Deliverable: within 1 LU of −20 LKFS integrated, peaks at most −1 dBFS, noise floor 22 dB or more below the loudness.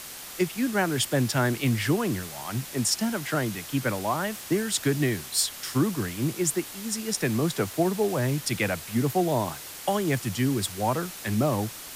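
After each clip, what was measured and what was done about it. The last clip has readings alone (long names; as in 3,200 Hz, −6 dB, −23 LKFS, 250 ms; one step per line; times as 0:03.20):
background noise floor −41 dBFS; target noise floor −49 dBFS; integrated loudness −27.0 LKFS; sample peak −11.5 dBFS; target loudness −20.0 LKFS
→ broadband denoise 8 dB, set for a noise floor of −41 dBFS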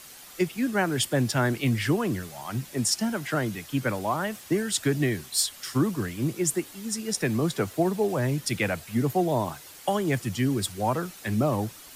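background noise floor −47 dBFS; target noise floor −49 dBFS
→ broadband denoise 6 dB, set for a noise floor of −47 dBFS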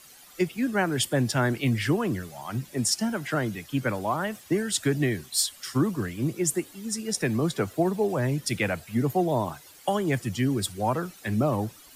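background noise floor −51 dBFS; integrated loudness −27.0 LKFS; sample peak −11.5 dBFS; target loudness −20.0 LKFS
→ level +7 dB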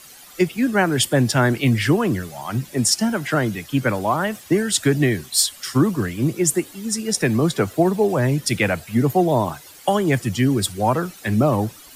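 integrated loudness −20.0 LKFS; sample peak −4.5 dBFS; background noise floor −44 dBFS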